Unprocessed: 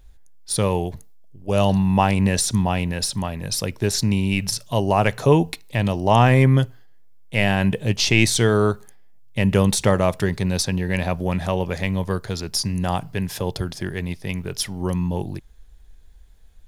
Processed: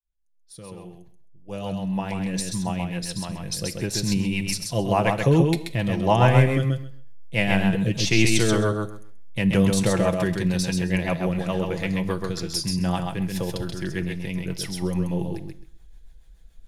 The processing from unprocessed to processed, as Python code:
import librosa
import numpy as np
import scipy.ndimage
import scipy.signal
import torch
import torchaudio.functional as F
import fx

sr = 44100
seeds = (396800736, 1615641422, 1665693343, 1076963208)

y = fx.fade_in_head(x, sr, length_s=4.85)
y = y + 0.48 * np.pad(y, (int(6.0 * sr / 1000.0), 0))[:len(y)]
y = fx.rotary(y, sr, hz=7.0)
y = fx.echo_feedback(y, sr, ms=132, feedback_pct=16, wet_db=-4.0)
y = fx.rev_schroeder(y, sr, rt60_s=0.54, comb_ms=25, drr_db=16.5)
y = y * 10.0 ** (-2.0 / 20.0)